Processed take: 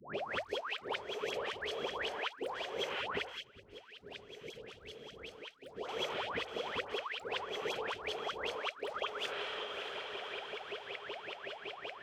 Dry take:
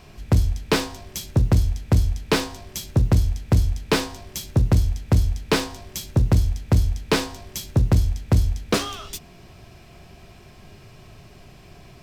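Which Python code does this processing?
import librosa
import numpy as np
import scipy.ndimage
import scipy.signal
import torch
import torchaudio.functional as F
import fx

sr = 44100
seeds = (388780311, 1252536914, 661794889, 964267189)

y = fx.spec_swells(x, sr, rise_s=0.65)
y = fx.wah_lfo(y, sr, hz=5.3, low_hz=400.0, high_hz=3300.0, q=18.0)
y = fx.hum_notches(y, sr, base_hz=50, count=2)
y = fx.echo_diffused(y, sr, ms=580, feedback_pct=48, wet_db=-15.0)
y = np.clip(y, -10.0 ** (-34.0 / 20.0), 10.0 ** (-34.0 / 20.0))
y = fx.low_shelf(y, sr, hz=250.0, db=-9.5)
y = fx.over_compress(y, sr, threshold_db=-47.0, ratio=-0.5)
y = fx.tone_stack(y, sr, knobs='10-0-1', at=(3.28, 5.74), fade=0.02)
y = fx.dispersion(y, sr, late='highs', ms=149.0, hz=980.0)
y = fx.band_squash(y, sr, depth_pct=70)
y = y * librosa.db_to_amplitude(9.5)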